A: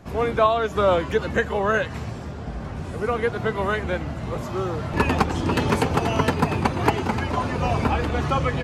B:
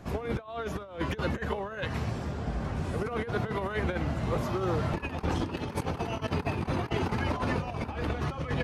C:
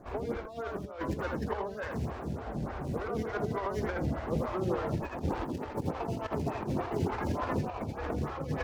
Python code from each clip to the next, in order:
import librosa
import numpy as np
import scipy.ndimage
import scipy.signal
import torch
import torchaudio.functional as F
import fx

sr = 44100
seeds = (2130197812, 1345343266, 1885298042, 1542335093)

y1 = fx.dynamic_eq(x, sr, hz=7400.0, q=3.5, threshold_db=-58.0, ratio=4.0, max_db=-7)
y1 = fx.over_compress(y1, sr, threshold_db=-26.0, ratio=-0.5)
y1 = y1 * librosa.db_to_amplitude(-4.5)
y2 = scipy.signal.medfilt(y1, 15)
y2 = y2 + 10.0 ** (-4.0 / 20.0) * np.pad(y2, (int(83 * sr / 1000.0), 0))[:len(y2)]
y2 = fx.stagger_phaser(y2, sr, hz=3.4)